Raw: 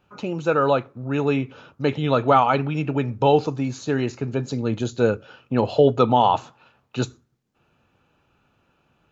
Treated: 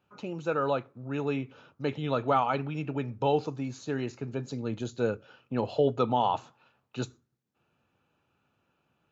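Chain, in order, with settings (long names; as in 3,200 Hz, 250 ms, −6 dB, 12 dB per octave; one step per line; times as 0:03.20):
high-pass filter 77 Hz
level −9 dB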